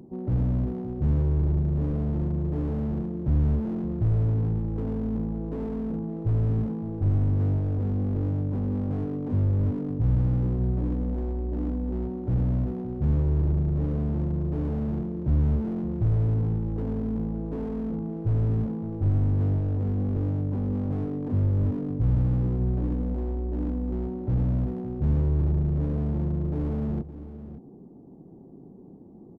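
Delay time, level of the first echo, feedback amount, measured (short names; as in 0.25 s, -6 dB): 0.566 s, -14.0 dB, no steady repeat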